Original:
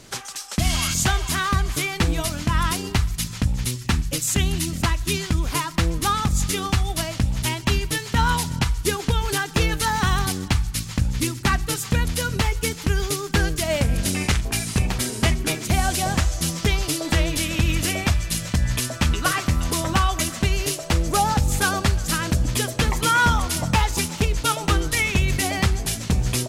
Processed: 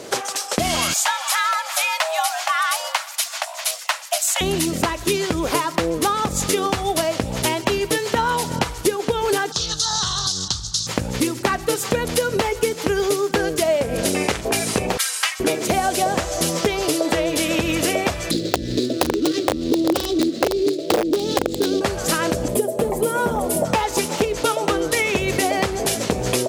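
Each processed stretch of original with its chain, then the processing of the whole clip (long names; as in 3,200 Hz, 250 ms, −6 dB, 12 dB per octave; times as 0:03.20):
0:00.93–0:04.41: Butterworth high-pass 490 Hz 72 dB per octave + frequency shifter +140 Hz
0:09.52–0:10.87: drawn EQ curve 130 Hz 0 dB, 280 Hz −18 dB, 560 Hz −20 dB, 1,300 Hz −5 dB, 2,300 Hz −22 dB, 3,700 Hz +10 dB, 6,300 Hz +12 dB, 13,000 Hz −17 dB + downward compressor 3 to 1, threshold −24 dBFS + highs frequency-modulated by the lows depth 0.25 ms
0:14.97–0:15.40: high-pass filter 1,200 Hz 24 dB per octave + comb filter 3.8 ms, depth 54%
0:18.31–0:21.81: running median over 15 samples + drawn EQ curve 180 Hz 0 dB, 320 Hz +13 dB, 930 Hz −24 dB, 2,500 Hz −1 dB, 3,900 Hz +15 dB, 14,000 Hz −6 dB + wrap-around overflow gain 11.5 dB
0:22.48–0:23.65: flat-topped bell 2,600 Hz −14 dB 3 octaves + hard clipping −15.5 dBFS + comb filter 4.9 ms, depth 39%
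whole clip: high-pass filter 300 Hz 6 dB per octave; parametric band 490 Hz +14 dB 1.5 octaves; downward compressor, threshold −24 dBFS; level +7 dB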